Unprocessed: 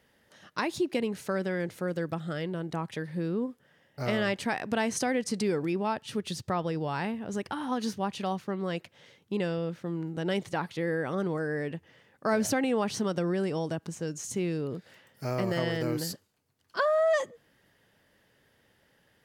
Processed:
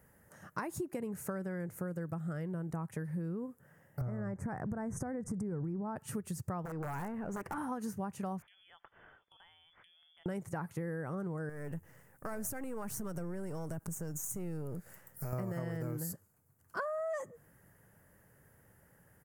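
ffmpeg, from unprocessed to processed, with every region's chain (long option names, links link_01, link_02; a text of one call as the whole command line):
ffmpeg -i in.wav -filter_complex "[0:a]asettb=1/sr,asplit=3[link_01][link_02][link_03];[link_01]atrim=end=4.014[link_04];[link_02]atrim=start=4.01:end=5.96,asetpts=PTS-STARTPTS,afade=type=in:duration=0.004:curve=qsin,afade=type=out:start_time=1.946:duration=0.004:curve=qsin,asuperstop=centerf=3300:order=4:qfactor=0.83,aemphasis=mode=reproduction:type=bsi,acompressor=threshold=-29dB:ratio=2.5:attack=3.2:release=140:knee=1:detection=peak[link_05];[link_03]atrim=start=5.956[link_06];[link_04][link_05]acrossfade=duration=0.004:curve1=hsin:curve2=qsin[link_07];[link_07][link_06]acrossfade=duration=0.004:curve1=qsin:curve2=hsin,asettb=1/sr,asplit=3[link_08][link_09][link_10];[link_08]atrim=end=6.654[link_11];[link_09]atrim=start=6.65:end=7.58,asetpts=PTS-STARTPTS,afade=type=in:duration=0.004:curve=qsin,afade=type=out:start_time=0.926:duration=0.004:curve=qsin,aeval=exprs='(mod(16.8*val(0)+1,2)-1)/16.8':channel_layout=same,acompressor=threshold=-36dB:ratio=6:attack=3.2:release=140:knee=1:detection=peak,asplit=2[link_12][link_13];[link_13]highpass=frequency=720:poles=1,volume=17dB,asoftclip=type=tanh:threshold=-27dB[link_14];[link_12][link_14]amix=inputs=2:normalize=0,lowpass=frequency=1600:poles=1,volume=-6dB[link_15];[link_10]atrim=start=7.576[link_16];[link_11][link_15]acrossfade=duration=0.004:curve1=hsin:curve2=qsin[link_17];[link_17][link_16]acrossfade=duration=0.004:curve1=qsin:curve2=hsin,asettb=1/sr,asplit=3[link_18][link_19][link_20];[link_18]atrim=end=8.424[link_21];[link_19]atrim=start=8.42:end=10.26,asetpts=PTS-STARTPTS,afade=type=in:duration=0.004:curve=qsin,afade=type=out:start_time=1.836:duration=0.004:curve=qsin,lowpass=frequency=3100:width_type=q:width=0.5098,lowpass=frequency=3100:width_type=q:width=0.6013,lowpass=frequency=3100:width_type=q:width=0.9,lowpass=frequency=3100:width_type=q:width=2.563,afreqshift=-3600,acompressor=threshold=-46dB:ratio=8:attack=3.2:release=140:knee=1:detection=peak[link_22];[link_20]atrim=start=10.256[link_23];[link_21][link_22]acrossfade=duration=0.004:curve1=hsin:curve2=qsin[link_24];[link_24][link_23]acrossfade=duration=0.004:curve1=qsin:curve2=hsin,asettb=1/sr,asplit=3[link_25][link_26][link_27];[link_25]atrim=end=11.494[link_28];[link_26]atrim=start=11.49:end=15.33,asetpts=PTS-STARTPTS,afade=type=in:duration=0.004:curve=qsin,afade=type=out:start_time=3.836:duration=0.004:curve=qsin,aeval=exprs='if(lt(val(0),0),0.447*val(0),val(0))':channel_layout=same,highshelf=frequency=5500:gain=10,acompressor=threshold=-40dB:ratio=2.5:attack=3.2:release=140:knee=1:detection=peak[link_29];[link_27]atrim=start=15.326[link_30];[link_28][link_29]acrossfade=duration=0.004:curve1=hsin:curve2=qsin[link_31];[link_31][link_30]acrossfade=duration=0.004:curve1=qsin:curve2=hsin,firequalizer=gain_entry='entry(160,0);entry(240,-8);entry(1400,-6);entry(3500,-27);entry(7100,-5);entry(12000,2)':delay=0.05:min_phase=1,acompressor=threshold=-43dB:ratio=6,volume=7.5dB" out.wav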